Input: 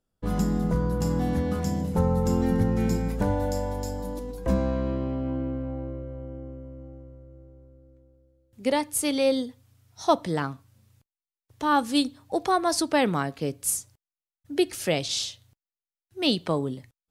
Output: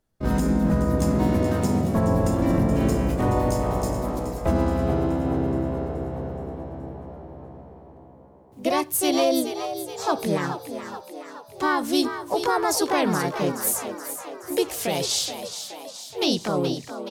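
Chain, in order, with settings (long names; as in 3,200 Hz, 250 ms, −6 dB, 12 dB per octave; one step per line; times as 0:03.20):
brickwall limiter −17.5 dBFS, peak gain reduction 8.5 dB
pitch-shifted copies added +4 semitones 0 dB
echo with shifted repeats 424 ms, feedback 58%, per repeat +64 Hz, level −10 dB
level +1.5 dB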